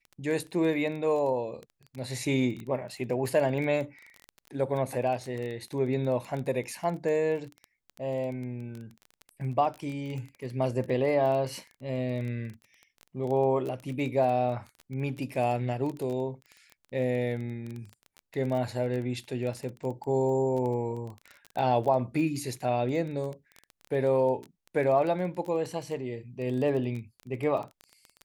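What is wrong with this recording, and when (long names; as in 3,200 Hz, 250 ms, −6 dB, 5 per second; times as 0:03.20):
surface crackle 16 per second −33 dBFS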